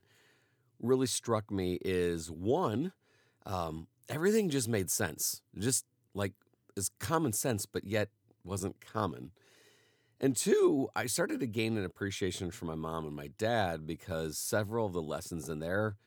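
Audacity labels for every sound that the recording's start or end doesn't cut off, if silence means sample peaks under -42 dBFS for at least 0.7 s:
0.810000	9.270000	sound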